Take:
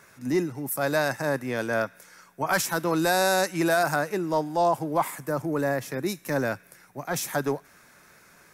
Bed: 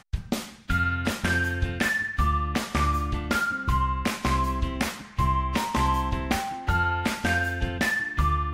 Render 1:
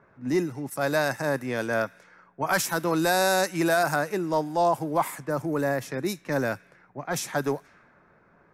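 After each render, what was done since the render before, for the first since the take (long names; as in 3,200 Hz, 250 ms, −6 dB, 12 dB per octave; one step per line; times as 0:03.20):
low-pass that shuts in the quiet parts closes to 1,000 Hz, open at −24 dBFS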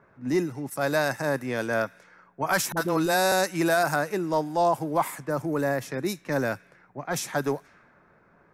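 0:02.72–0:03.32: all-pass dispersion highs, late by 49 ms, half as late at 430 Hz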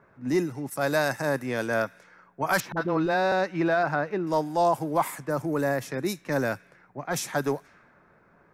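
0:02.60–0:04.27: high-frequency loss of the air 270 metres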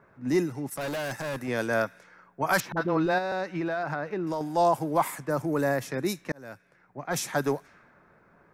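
0:00.68–0:01.48: hard clipping −29.5 dBFS
0:03.18–0:04.41: downward compressor, threshold −26 dBFS
0:06.32–0:07.19: fade in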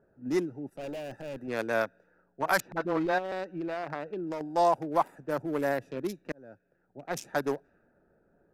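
adaptive Wiener filter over 41 samples
parametric band 130 Hz −9 dB 1.8 octaves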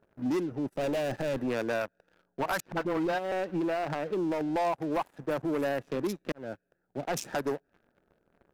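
downward compressor 4 to 1, threshold −37 dBFS, peak gain reduction 14.5 dB
leveller curve on the samples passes 3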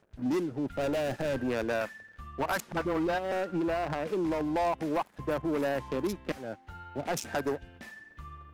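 mix in bed −22 dB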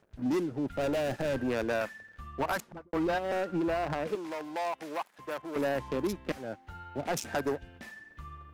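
0:02.46–0:02.93: fade out and dull
0:04.15–0:05.56: high-pass filter 1,000 Hz 6 dB per octave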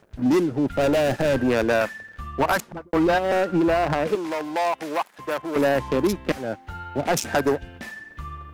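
level +10 dB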